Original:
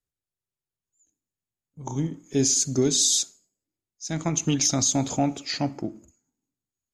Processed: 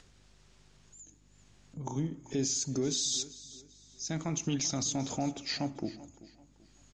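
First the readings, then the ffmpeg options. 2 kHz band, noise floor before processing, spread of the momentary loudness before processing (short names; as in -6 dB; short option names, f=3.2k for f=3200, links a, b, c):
-6.5 dB, under -85 dBFS, 14 LU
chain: -filter_complex "[0:a]lowpass=f=6.7k:w=0.5412,lowpass=f=6.7k:w=1.3066,bandreject=f=60:t=h:w=6,bandreject=f=120:t=h:w=6,asplit=2[a][b];[b]acompressor=threshold=-36dB:ratio=6,volume=3dB[c];[a][c]amix=inputs=2:normalize=0,alimiter=limit=-14.5dB:level=0:latency=1:release=17,acompressor=mode=upward:threshold=-29dB:ratio=2.5,aeval=exprs='val(0)+0.00178*(sin(2*PI*50*n/s)+sin(2*PI*2*50*n/s)/2+sin(2*PI*3*50*n/s)/3+sin(2*PI*4*50*n/s)/4+sin(2*PI*5*50*n/s)/5)':c=same,asplit=2[d][e];[e]aecho=0:1:387|774|1161:0.126|0.0415|0.0137[f];[d][f]amix=inputs=2:normalize=0,volume=-8.5dB"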